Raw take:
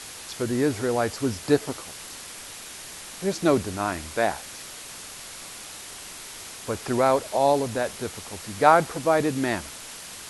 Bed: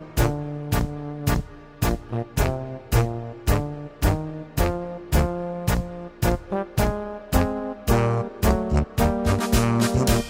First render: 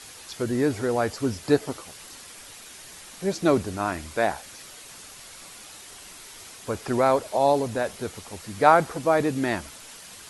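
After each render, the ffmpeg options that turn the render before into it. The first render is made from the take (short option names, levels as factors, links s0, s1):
-af "afftdn=nr=6:nf=-41"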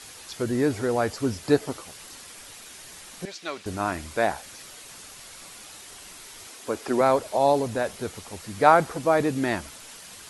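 -filter_complex "[0:a]asettb=1/sr,asplit=3[s0][s1][s2];[s0]atrim=end=3.254[s3];[s1]atrim=start=3.25:end=3.66,asetpts=PTS-STARTPTS,afade=t=in:d=0.004:c=qsin,afade=t=out:st=0.406:d=0.004:c=qsin,bandpass=f=3000:t=q:w=0.94[s4];[s2]atrim=start=3.656[s5];[s3][s4]acrossfade=d=0.004:c1=hsin:c2=qsin[s6];[s6][s5]acrossfade=d=0.004:c1=qsin:c2=hsin,asettb=1/sr,asplit=3[s7][s8][s9];[s7]atrim=end=6.474[s10];[s8]atrim=start=6.47:end=7.01,asetpts=PTS-STARTPTS,afade=t=in:d=0.004:c=qsin,afade=t=out:st=0.536:d=0.004:c=qsin,lowshelf=f=200:t=q:w=1.5:g=-9[s11];[s9]atrim=start=7.006[s12];[s10][s11]acrossfade=d=0.004:c1=hsin:c2=qsin[s13];[s13][s12]acrossfade=d=0.004:c1=qsin:c2=hsin"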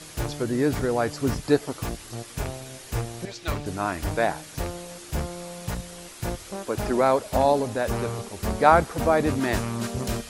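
-filter_complex "[1:a]volume=0.355[s0];[0:a][s0]amix=inputs=2:normalize=0"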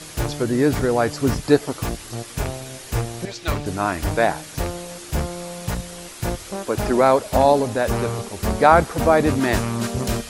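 -af "volume=1.78,alimiter=limit=0.891:level=0:latency=1"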